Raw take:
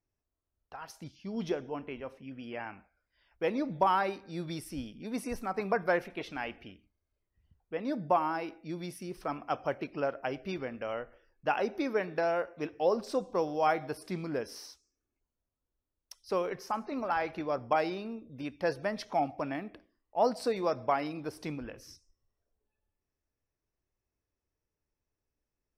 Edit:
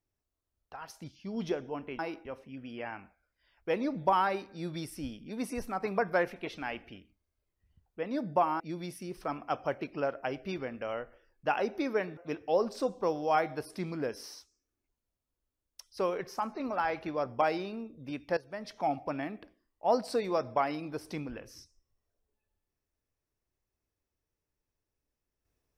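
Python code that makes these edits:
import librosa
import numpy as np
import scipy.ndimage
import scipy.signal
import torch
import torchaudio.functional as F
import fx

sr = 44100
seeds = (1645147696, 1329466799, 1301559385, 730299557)

y = fx.edit(x, sr, fx.move(start_s=8.34, length_s=0.26, to_s=1.99),
    fx.cut(start_s=12.17, length_s=0.32),
    fx.fade_in_from(start_s=18.69, length_s=0.59, floor_db=-16.5), tone=tone)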